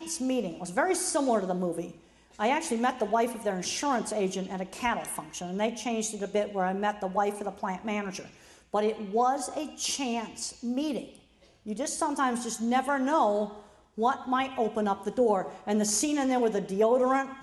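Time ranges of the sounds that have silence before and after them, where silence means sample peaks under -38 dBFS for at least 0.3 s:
2.39–8.25
8.74–11.15
11.66–13.6

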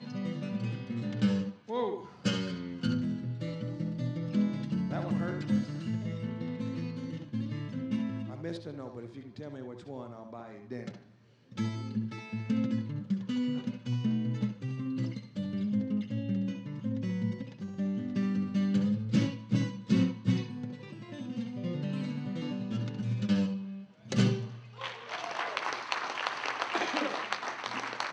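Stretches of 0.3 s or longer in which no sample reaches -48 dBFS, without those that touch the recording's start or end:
11.02–11.52

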